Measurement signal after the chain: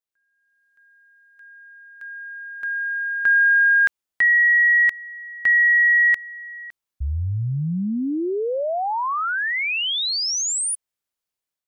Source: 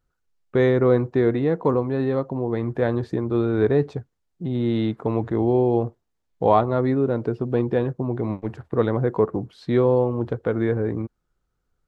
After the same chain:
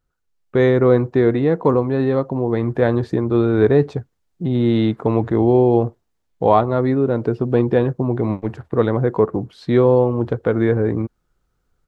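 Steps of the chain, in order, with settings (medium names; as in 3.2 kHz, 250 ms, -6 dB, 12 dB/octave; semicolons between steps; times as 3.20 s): level rider gain up to 6.5 dB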